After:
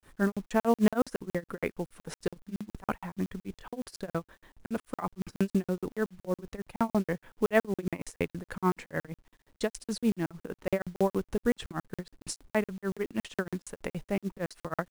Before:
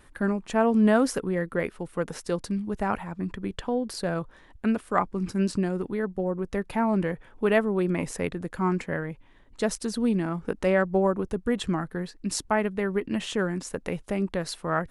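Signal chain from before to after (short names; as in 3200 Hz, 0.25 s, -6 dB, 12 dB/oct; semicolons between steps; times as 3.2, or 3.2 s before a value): grains 0.177 s, grains 6.4/s, spray 36 ms, pitch spread up and down by 0 st; companded quantiser 6-bit; crackling interface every 0.14 s, samples 2048, zero, from 0.32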